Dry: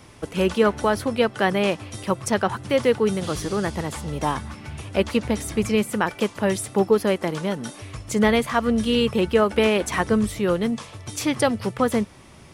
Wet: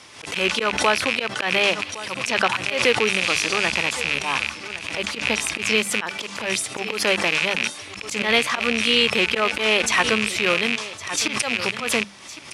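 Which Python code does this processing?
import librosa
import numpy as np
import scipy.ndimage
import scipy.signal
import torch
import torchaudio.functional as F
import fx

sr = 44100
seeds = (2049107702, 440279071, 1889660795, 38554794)

y = fx.rattle_buzz(x, sr, strikes_db=-31.0, level_db=-16.0)
y = scipy.signal.sosfilt(scipy.signal.butter(2, 5300.0, 'lowpass', fs=sr, output='sos'), y)
y = fx.tilt_eq(y, sr, slope=4.0)
y = fx.hum_notches(y, sr, base_hz=50, count=4)
y = fx.auto_swell(y, sr, attack_ms=120.0)
y = y + 10.0 ** (-16.0 / 20.0) * np.pad(y, (int(1112 * sr / 1000.0), 0))[:len(y)]
y = fx.pre_swell(y, sr, db_per_s=83.0)
y = y * librosa.db_to_amplitude(2.5)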